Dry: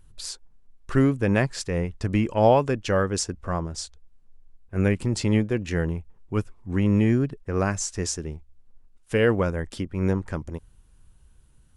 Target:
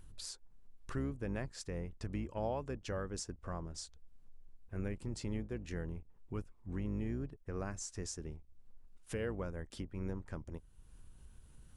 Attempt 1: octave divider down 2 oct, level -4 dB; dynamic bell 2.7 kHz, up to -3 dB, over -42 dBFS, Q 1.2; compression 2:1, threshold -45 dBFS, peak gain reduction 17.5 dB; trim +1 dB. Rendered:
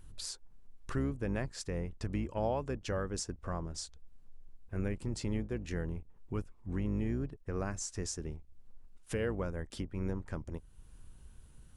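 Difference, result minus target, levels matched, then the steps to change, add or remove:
compression: peak gain reduction -4 dB
change: compression 2:1, threshold -53.5 dBFS, peak gain reduction 21.5 dB

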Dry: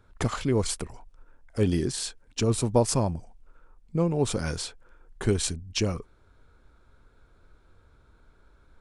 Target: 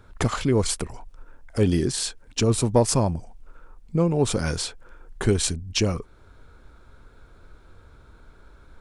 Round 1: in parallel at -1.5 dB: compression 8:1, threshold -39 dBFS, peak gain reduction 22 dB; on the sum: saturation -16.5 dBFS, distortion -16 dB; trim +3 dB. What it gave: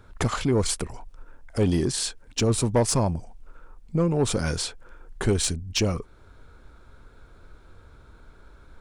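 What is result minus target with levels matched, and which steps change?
saturation: distortion +15 dB
change: saturation -7 dBFS, distortion -30 dB

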